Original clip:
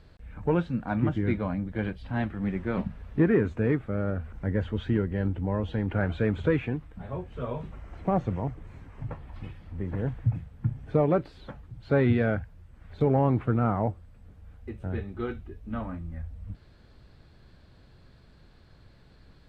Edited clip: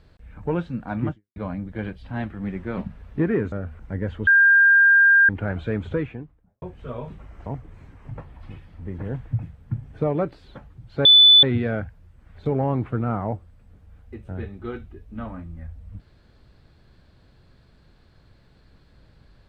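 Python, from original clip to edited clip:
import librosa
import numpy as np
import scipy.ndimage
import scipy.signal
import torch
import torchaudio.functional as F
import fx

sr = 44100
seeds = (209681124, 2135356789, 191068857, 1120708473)

y = fx.studio_fade_out(x, sr, start_s=6.33, length_s=0.82)
y = fx.edit(y, sr, fx.fade_out_span(start_s=1.11, length_s=0.25, curve='exp'),
    fx.cut(start_s=3.52, length_s=0.53),
    fx.bleep(start_s=4.8, length_s=1.02, hz=1600.0, db=-11.0),
    fx.cut(start_s=7.99, length_s=0.4),
    fx.insert_tone(at_s=11.98, length_s=0.38, hz=3490.0, db=-8.0), tone=tone)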